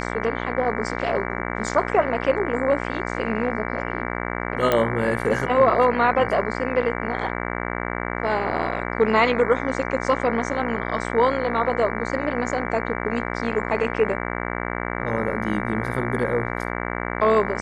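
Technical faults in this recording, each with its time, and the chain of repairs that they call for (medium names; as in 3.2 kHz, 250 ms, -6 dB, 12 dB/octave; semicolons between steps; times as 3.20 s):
buzz 60 Hz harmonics 38 -28 dBFS
4.72 s: pop -7 dBFS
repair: de-click; de-hum 60 Hz, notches 38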